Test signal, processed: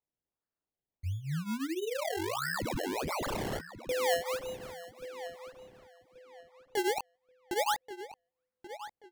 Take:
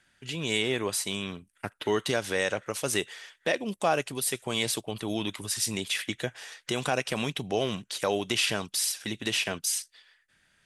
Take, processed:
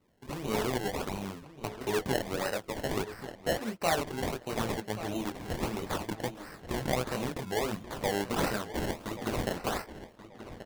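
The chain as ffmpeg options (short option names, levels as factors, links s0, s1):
-filter_complex "[0:a]flanger=delay=18:depth=6.3:speed=0.63,acrusher=samples=25:mix=1:aa=0.000001:lfo=1:lforange=25:lforate=1.5,asplit=2[s0][s1];[s1]adelay=1132,lowpass=f=4200:p=1,volume=0.224,asplit=2[s2][s3];[s3]adelay=1132,lowpass=f=4200:p=1,volume=0.28,asplit=2[s4][s5];[s5]adelay=1132,lowpass=f=4200:p=1,volume=0.28[s6];[s0][s2][s4][s6]amix=inputs=4:normalize=0"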